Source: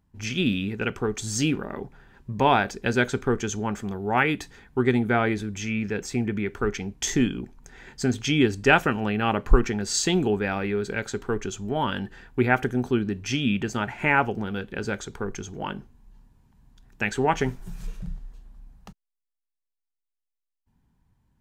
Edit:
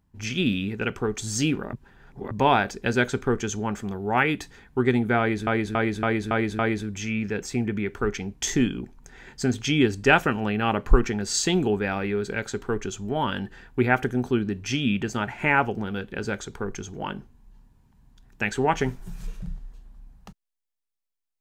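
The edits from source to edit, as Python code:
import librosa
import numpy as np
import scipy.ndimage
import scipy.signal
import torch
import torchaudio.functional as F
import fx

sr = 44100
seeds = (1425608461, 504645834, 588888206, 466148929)

y = fx.edit(x, sr, fx.reverse_span(start_s=1.73, length_s=0.58),
    fx.repeat(start_s=5.19, length_s=0.28, count=6), tone=tone)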